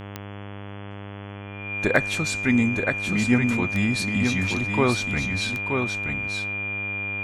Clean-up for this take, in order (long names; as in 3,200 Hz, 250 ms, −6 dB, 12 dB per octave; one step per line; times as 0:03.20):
click removal
hum removal 100.7 Hz, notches 34
notch filter 2,400 Hz, Q 30
echo removal 926 ms −5 dB